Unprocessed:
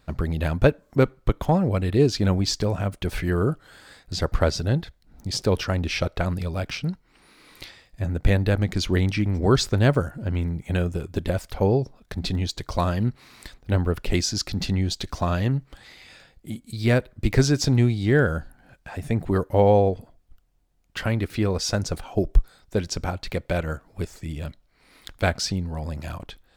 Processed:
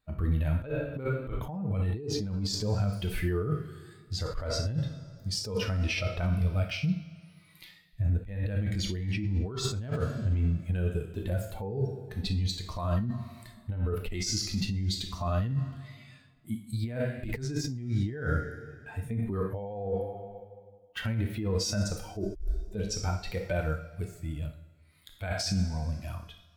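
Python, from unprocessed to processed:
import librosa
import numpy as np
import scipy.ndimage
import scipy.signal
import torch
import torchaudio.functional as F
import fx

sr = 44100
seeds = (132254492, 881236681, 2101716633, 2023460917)

y = fx.bin_expand(x, sr, power=1.5)
y = fx.rev_double_slope(y, sr, seeds[0], early_s=0.44, late_s=1.8, knee_db=-16, drr_db=7.0)
y = fx.over_compress(y, sr, threshold_db=-31.0, ratio=-1.0)
y = fx.hpss(y, sr, part='percussive', gain_db=-11)
y = y * librosa.db_to_amplitude(2.5)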